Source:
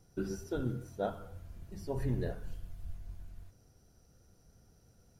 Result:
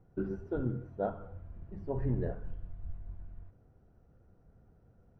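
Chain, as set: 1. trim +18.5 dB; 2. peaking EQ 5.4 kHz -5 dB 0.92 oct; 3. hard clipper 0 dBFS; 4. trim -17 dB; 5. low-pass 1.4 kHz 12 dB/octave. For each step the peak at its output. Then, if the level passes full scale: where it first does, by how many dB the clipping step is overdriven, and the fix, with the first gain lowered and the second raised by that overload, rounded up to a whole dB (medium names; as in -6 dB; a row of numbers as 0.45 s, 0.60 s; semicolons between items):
-4.0 dBFS, -4.0 dBFS, -4.0 dBFS, -21.0 dBFS, -21.0 dBFS; nothing clips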